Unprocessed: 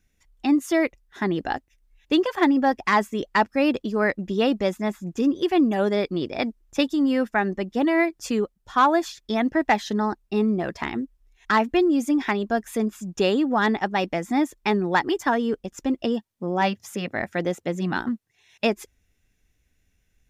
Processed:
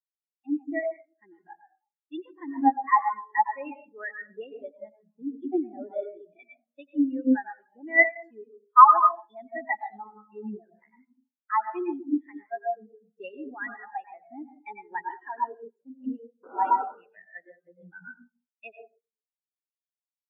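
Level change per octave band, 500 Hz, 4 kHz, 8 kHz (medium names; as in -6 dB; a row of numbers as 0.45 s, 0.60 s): -12.0 dB, under -25 dB, under -35 dB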